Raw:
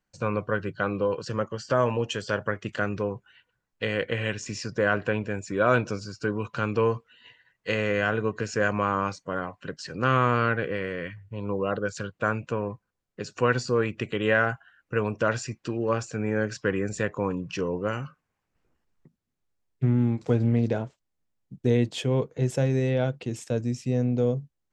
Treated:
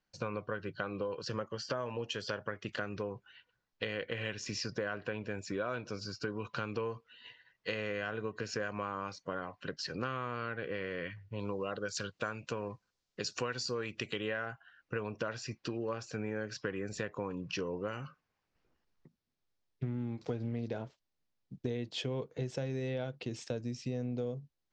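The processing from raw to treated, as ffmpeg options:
-filter_complex "[0:a]asettb=1/sr,asplit=3[s0][s1][s2];[s0]atrim=end=11.394[s3];[s1]atrim=start=11.39:end=14.21,asetpts=PTS-STARTPTS,afade=t=in:d=0.004:c=qsin,afade=t=out:st=2.816:d=0.004:c=qsin,aemphasis=mode=production:type=75kf[s4];[s2]atrim=start=14.206[s5];[s3][s4]acrossfade=d=0.004:c1=hsin:c2=qsin[s6];[s6][s5]acrossfade=d=0.004:c1=qsin:c2=hsin,lowpass=f=5100:w=0.5412,lowpass=f=5100:w=1.3066,bass=f=250:g=-3,treble=f=4000:g=9,acompressor=threshold=0.0282:ratio=6,volume=0.75"

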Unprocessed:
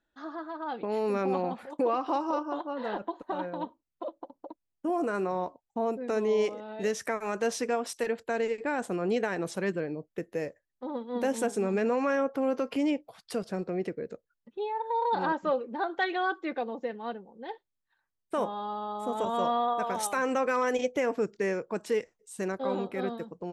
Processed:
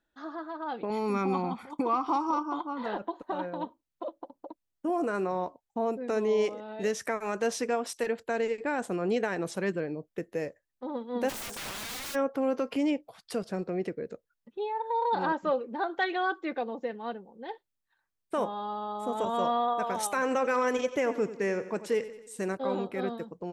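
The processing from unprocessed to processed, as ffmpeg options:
-filter_complex "[0:a]asettb=1/sr,asplit=3[s0][s1][s2];[s0]atrim=end=0.904[s3];[s1]atrim=start=0.9:end=2.86,asetpts=PTS-STARTPTS,afade=t=in:d=0.004:c=qsin,afade=t=out:st=1.956:d=0.004:c=qsin,aecho=1:1:0.9:0.67,atrim=end_sample=86436[s4];[s2]atrim=start=2.856[s5];[s3][s4]acrossfade=d=0.004:c1=hsin:c2=qsin[s6];[s6][s5]acrossfade=d=0.004:c1=qsin:c2=hsin,asplit=3[s7][s8][s9];[s7]afade=t=out:st=11.28:d=0.02[s10];[s8]aeval=exprs='(mod(47.3*val(0)+1,2)-1)/47.3':c=same,afade=t=in:st=11.28:d=0.02,afade=t=out:st=12.14:d=0.02[s11];[s9]afade=t=in:st=12.14:d=0.02[s12];[s10][s11][s12]amix=inputs=3:normalize=0,asettb=1/sr,asplit=3[s13][s14][s15];[s13]atrim=end=20.114[s16];[s14]atrim=start=20.11:end=22.57,asetpts=PTS-STARTPTS,afade=t=in:d=0.004:c=qsin,afade=t=out:st=2.456:d=0.004:c=qsin,aecho=1:1:91|182|273|364|455:0.2|0.106|0.056|0.0297|0.0157,atrim=end_sample=108486[s17];[s15]atrim=start=22.566[s18];[s16][s17]acrossfade=d=0.004:c1=hsin:c2=qsin[s19];[s19][s18]acrossfade=d=0.004:c1=qsin:c2=hsin"

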